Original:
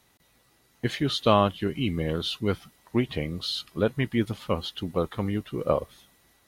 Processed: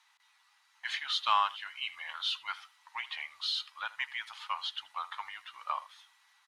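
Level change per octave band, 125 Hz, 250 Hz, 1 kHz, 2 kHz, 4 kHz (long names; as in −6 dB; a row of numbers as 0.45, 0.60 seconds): below −40 dB, below −40 dB, −2.5 dB, −0.5 dB, −2.0 dB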